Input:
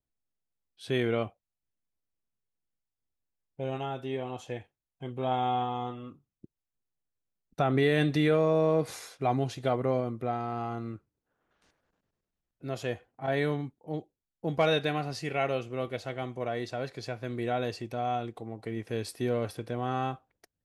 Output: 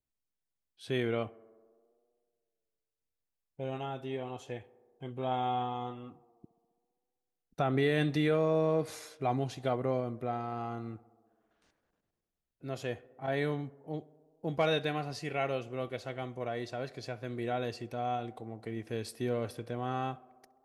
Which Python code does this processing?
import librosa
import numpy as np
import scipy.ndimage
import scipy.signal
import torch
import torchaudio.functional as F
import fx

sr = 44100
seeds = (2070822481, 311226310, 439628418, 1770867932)

y = fx.echo_tape(x, sr, ms=65, feedback_pct=87, wet_db=-21, lp_hz=1900.0, drive_db=19.0, wow_cents=19)
y = F.gain(torch.from_numpy(y), -3.5).numpy()